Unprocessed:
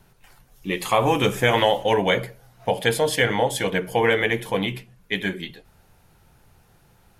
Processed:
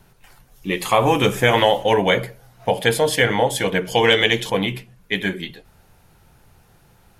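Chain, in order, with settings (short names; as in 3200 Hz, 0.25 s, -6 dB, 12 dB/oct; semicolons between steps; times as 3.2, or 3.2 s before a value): 3.85–4.5 band shelf 4600 Hz +10.5 dB; gain +3 dB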